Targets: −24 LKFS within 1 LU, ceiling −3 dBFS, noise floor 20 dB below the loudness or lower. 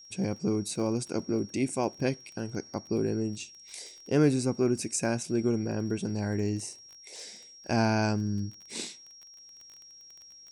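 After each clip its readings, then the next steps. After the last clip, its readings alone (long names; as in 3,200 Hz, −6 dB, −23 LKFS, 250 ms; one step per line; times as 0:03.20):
crackle rate 19 per second; interfering tone 5,600 Hz; level of the tone −49 dBFS; integrated loudness −30.0 LKFS; sample peak −11.5 dBFS; target loudness −24.0 LKFS
→ click removal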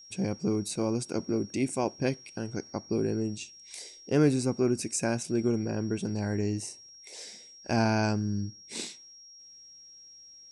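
crackle rate 0 per second; interfering tone 5,600 Hz; level of the tone −49 dBFS
→ notch filter 5,600 Hz, Q 30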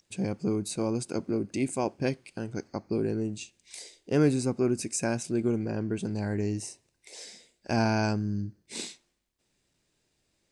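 interfering tone none found; integrated loudness −30.0 LKFS; sample peak −11.5 dBFS; target loudness −24.0 LKFS
→ level +6 dB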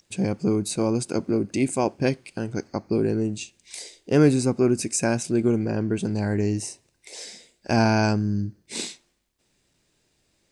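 integrated loudness −24.0 LKFS; sample peak −5.5 dBFS; background noise floor −70 dBFS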